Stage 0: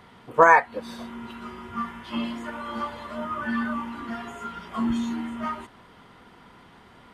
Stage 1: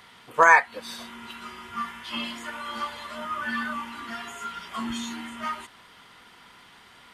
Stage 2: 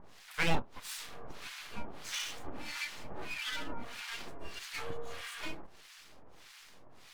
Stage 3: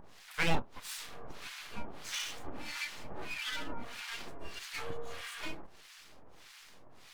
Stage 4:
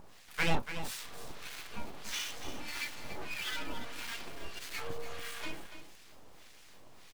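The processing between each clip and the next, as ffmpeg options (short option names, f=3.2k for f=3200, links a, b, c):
-af "tiltshelf=f=1.2k:g=-8.5"
-filter_complex "[0:a]acompressor=threshold=-37dB:ratio=1.5,aeval=exprs='abs(val(0))':c=same,acrossover=split=1100[a][b];[a]aeval=exprs='val(0)*(1-1/2+1/2*cos(2*PI*1.6*n/s))':c=same[c];[b]aeval=exprs='val(0)*(1-1/2-1/2*cos(2*PI*1.6*n/s))':c=same[d];[c][d]amix=inputs=2:normalize=0,volume=3dB"
-af "acompressor=mode=upward:threshold=-53dB:ratio=2.5"
-af "acrusher=bits=8:dc=4:mix=0:aa=0.000001,aecho=1:1:287:0.299"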